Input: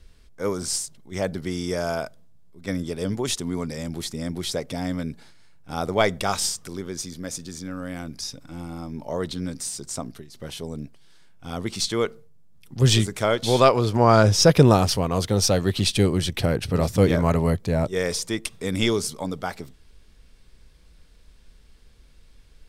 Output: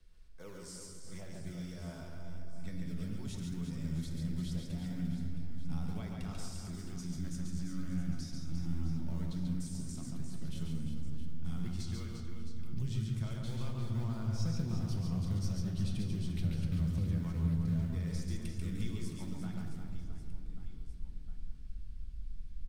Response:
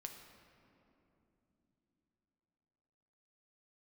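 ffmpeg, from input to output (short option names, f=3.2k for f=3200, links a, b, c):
-filter_complex "[0:a]acrossover=split=100|460|5700[a][b][c][d];[b]acrusher=samples=18:mix=1:aa=0.000001:lfo=1:lforange=18:lforate=2.1[e];[a][e][c][d]amix=inputs=4:normalize=0,acompressor=threshold=-35dB:ratio=4,asubboost=boost=11:cutoff=150,aecho=1:1:140|350|665|1138|1846:0.631|0.398|0.251|0.158|0.1[f];[1:a]atrim=start_sample=2205,asetrate=52920,aresample=44100[g];[f][g]afir=irnorm=-1:irlink=0,volume=-7.5dB"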